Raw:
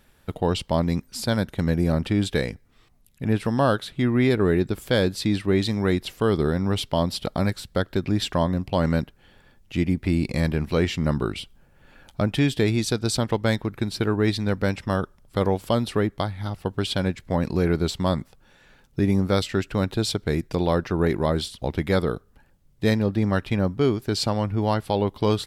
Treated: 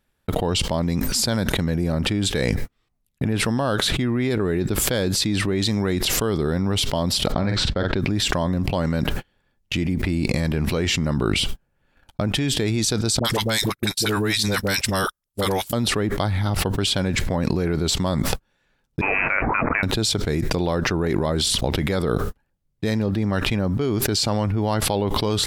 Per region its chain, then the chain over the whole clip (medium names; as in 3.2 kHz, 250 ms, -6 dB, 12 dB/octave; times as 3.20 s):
7.32–8.00 s: distance through air 150 m + doubling 46 ms -11 dB
13.19–15.73 s: pre-emphasis filter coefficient 0.9 + phase dispersion highs, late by 57 ms, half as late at 610 Hz
19.01–19.83 s: zero-crossing glitches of -18.5 dBFS + high-pass 800 Hz + frequency inversion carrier 2.8 kHz
whole clip: gate -43 dBFS, range -48 dB; dynamic bell 6.8 kHz, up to +5 dB, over -48 dBFS, Q 1.5; level flattener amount 100%; trim -4.5 dB